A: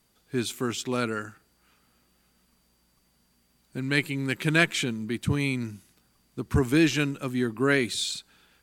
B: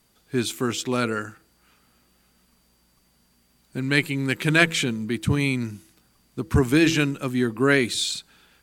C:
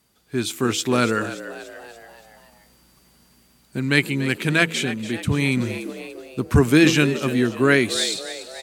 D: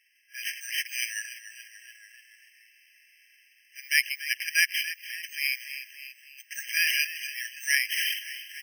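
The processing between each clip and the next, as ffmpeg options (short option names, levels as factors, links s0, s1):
-af "bandreject=f=163:t=h:w=4,bandreject=f=326:t=h:w=4,bandreject=f=489:t=h:w=4,volume=1.58"
-filter_complex "[0:a]highpass=43,asplit=6[s0][s1][s2][s3][s4][s5];[s1]adelay=288,afreqshift=81,volume=0.211[s6];[s2]adelay=576,afreqshift=162,volume=0.106[s7];[s3]adelay=864,afreqshift=243,volume=0.0531[s8];[s4]adelay=1152,afreqshift=324,volume=0.0263[s9];[s5]adelay=1440,afreqshift=405,volume=0.0132[s10];[s0][s6][s7][s8][s9][s10]amix=inputs=6:normalize=0,dynaudnorm=f=380:g=3:m=2.51,volume=0.891"
-af "bass=f=250:g=4,treble=f=4000:g=6,acrusher=samples=6:mix=1:aa=0.000001,afftfilt=real='re*eq(mod(floor(b*sr/1024/1600),2),1)':imag='im*eq(mod(floor(b*sr/1024/1600),2),1)':win_size=1024:overlap=0.75,volume=0.794"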